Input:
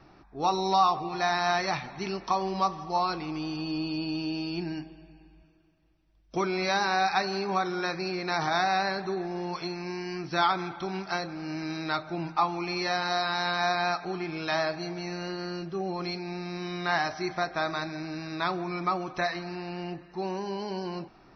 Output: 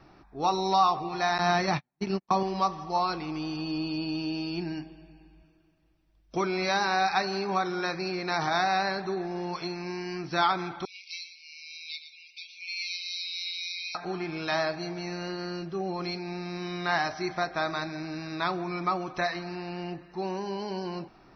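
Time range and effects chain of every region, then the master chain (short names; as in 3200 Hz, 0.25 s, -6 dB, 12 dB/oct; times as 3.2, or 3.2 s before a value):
1.38–2.43 gate -33 dBFS, range -47 dB + bell 190 Hz +8.5 dB 2 oct
10.85–13.95 brick-wall FIR high-pass 2100 Hz + echo 0.117 s -10.5 dB
whole clip: dry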